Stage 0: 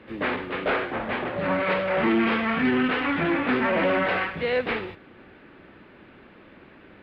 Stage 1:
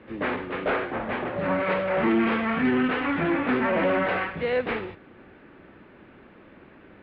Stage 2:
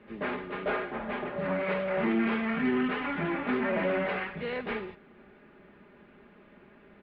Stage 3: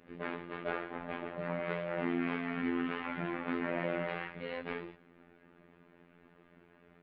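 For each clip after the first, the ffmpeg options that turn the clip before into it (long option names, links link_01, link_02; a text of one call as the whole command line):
ffmpeg -i in.wav -af "highshelf=frequency=3900:gain=-12" out.wav
ffmpeg -i in.wav -af "aecho=1:1:4.9:0.57,volume=-6.5dB" out.wav
ffmpeg -i in.wav -af "aeval=exprs='val(0)*sin(2*PI*22*n/s)':channel_layout=same,afftfilt=real='hypot(re,im)*cos(PI*b)':imag='0':win_size=2048:overlap=0.75" out.wav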